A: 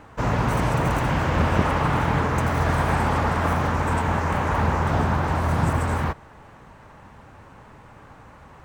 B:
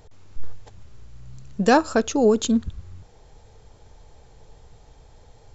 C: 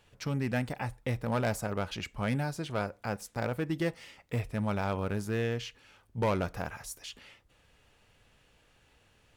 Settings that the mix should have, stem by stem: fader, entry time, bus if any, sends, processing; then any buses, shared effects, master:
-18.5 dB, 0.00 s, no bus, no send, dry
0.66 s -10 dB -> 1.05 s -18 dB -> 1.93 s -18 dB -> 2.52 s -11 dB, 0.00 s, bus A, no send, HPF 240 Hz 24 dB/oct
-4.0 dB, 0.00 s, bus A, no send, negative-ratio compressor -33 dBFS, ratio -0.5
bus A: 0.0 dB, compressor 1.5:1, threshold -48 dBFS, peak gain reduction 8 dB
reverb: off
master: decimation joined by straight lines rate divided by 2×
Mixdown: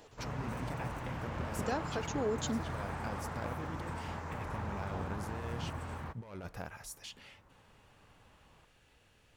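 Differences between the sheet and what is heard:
stem B -10.0 dB -> -2.0 dB; master: missing decimation joined by straight lines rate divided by 2×

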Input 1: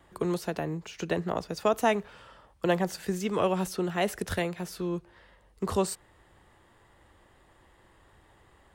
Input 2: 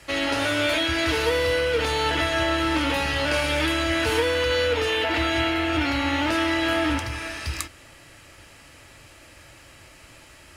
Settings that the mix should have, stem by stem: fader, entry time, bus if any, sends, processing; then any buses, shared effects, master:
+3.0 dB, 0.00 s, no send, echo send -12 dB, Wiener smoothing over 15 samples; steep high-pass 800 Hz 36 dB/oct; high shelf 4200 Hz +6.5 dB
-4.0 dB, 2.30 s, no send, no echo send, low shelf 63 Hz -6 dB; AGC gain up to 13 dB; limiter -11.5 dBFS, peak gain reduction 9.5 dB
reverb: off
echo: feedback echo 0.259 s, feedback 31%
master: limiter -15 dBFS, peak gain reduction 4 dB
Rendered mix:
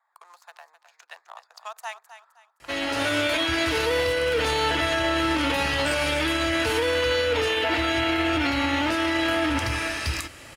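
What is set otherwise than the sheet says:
stem 1 +3.0 dB -> -6.5 dB; stem 2: entry 2.30 s -> 2.60 s

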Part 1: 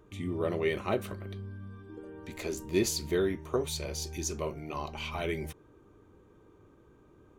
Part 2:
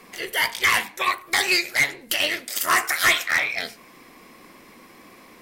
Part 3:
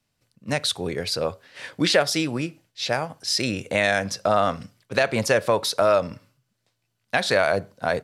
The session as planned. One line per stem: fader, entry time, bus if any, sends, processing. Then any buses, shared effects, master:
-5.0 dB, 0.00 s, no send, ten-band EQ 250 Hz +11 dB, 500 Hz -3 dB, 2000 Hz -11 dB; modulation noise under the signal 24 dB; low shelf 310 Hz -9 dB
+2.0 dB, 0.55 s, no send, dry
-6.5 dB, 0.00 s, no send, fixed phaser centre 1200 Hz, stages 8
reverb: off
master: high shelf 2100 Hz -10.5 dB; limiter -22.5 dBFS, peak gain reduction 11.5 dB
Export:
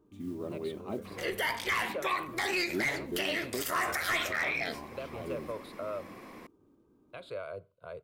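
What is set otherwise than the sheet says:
stem 2: entry 0.55 s -> 1.05 s; stem 3 -6.5 dB -> -16.0 dB

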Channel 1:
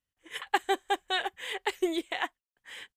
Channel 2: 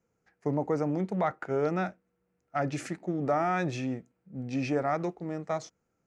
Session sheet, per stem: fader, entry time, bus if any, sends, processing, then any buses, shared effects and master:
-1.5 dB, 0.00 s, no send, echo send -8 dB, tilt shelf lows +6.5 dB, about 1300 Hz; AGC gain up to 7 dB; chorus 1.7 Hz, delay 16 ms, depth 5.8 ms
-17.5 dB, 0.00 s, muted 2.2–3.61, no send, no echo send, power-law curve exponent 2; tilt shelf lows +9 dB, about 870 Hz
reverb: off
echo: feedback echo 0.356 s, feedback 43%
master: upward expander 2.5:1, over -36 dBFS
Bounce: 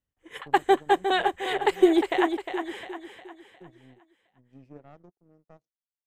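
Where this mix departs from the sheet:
stem 1: missing chorus 1.7 Hz, delay 16 ms, depth 5.8 ms; master: missing upward expander 2.5:1, over -36 dBFS

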